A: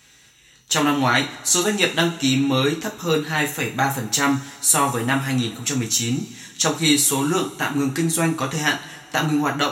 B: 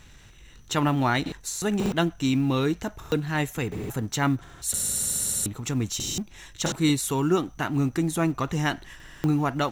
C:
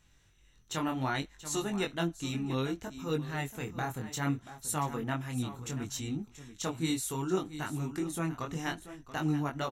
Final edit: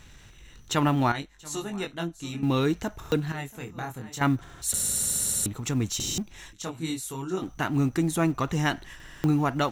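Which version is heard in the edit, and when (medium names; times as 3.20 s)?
B
1.12–2.43 s: from C
3.32–4.21 s: from C
6.53–7.42 s: from C
not used: A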